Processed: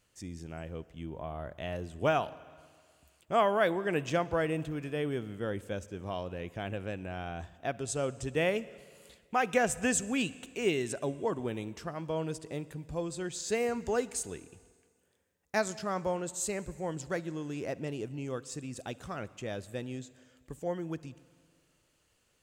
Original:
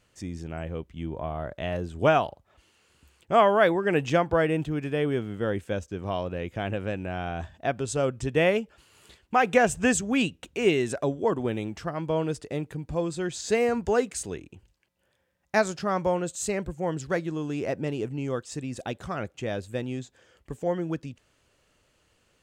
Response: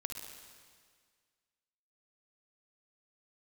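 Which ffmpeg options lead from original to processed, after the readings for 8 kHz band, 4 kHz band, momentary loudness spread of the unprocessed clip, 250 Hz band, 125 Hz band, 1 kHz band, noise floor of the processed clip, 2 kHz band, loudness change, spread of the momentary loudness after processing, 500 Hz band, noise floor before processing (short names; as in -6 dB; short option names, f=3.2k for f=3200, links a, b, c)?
-1.5 dB, -5.0 dB, 13 LU, -7.0 dB, -7.0 dB, -7.0 dB, -72 dBFS, -6.5 dB, -6.5 dB, 13 LU, -7.0 dB, -69 dBFS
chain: -filter_complex "[0:a]highshelf=f=6.3k:g=9,asplit=2[a][b];[1:a]atrim=start_sample=2205[c];[b][c]afir=irnorm=-1:irlink=0,volume=-12dB[d];[a][d]amix=inputs=2:normalize=0,volume=-8.5dB"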